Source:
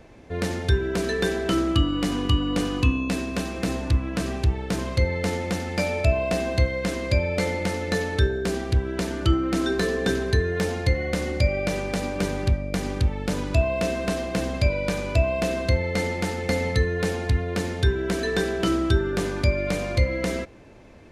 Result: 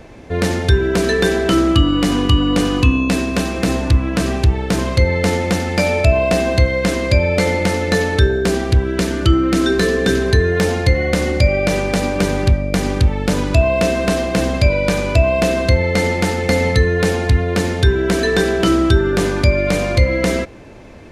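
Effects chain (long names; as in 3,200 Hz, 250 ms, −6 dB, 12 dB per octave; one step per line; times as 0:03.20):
0:08.84–0:10.25: parametric band 810 Hz −5.5 dB 0.72 octaves
in parallel at −2 dB: brickwall limiter −16.5 dBFS, peak gain reduction 8 dB
on the sum: level +4.5 dB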